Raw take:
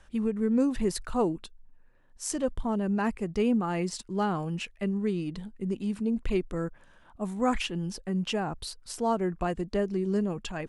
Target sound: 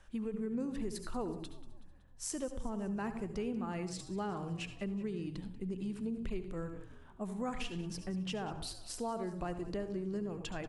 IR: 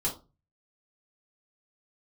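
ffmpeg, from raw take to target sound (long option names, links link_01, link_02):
-filter_complex "[0:a]asplit=2[link_01][link_02];[1:a]atrim=start_sample=2205,adelay=68[link_03];[link_02][link_03]afir=irnorm=-1:irlink=0,volume=-16.5dB[link_04];[link_01][link_04]amix=inputs=2:normalize=0,acompressor=threshold=-32dB:ratio=3,asplit=2[link_05][link_06];[link_06]asplit=5[link_07][link_08][link_09][link_10][link_11];[link_07]adelay=187,afreqshift=-43,volume=-17dB[link_12];[link_08]adelay=374,afreqshift=-86,volume=-22.5dB[link_13];[link_09]adelay=561,afreqshift=-129,volume=-28dB[link_14];[link_10]adelay=748,afreqshift=-172,volume=-33.5dB[link_15];[link_11]adelay=935,afreqshift=-215,volume=-39.1dB[link_16];[link_12][link_13][link_14][link_15][link_16]amix=inputs=5:normalize=0[link_17];[link_05][link_17]amix=inputs=2:normalize=0,volume=-4.5dB"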